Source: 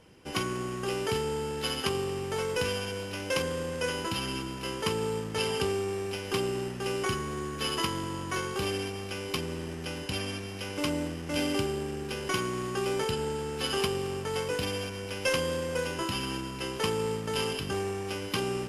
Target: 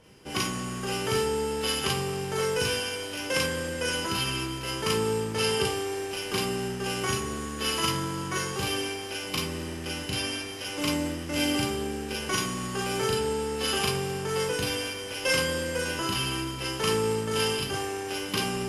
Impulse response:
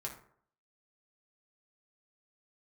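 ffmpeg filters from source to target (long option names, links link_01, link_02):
-filter_complex "[0:a]asplit=2[link_01][link_02];[1:a]atrim=start_sample=2205,highshelf=frequency=2300:gain=12,adelay=37[link_03];[link_02][link_03]afir=irnorm=-1:irlink=0,volume=-3dB[link_04];[link_01][link_04]amix=inputs=2:normalize=0"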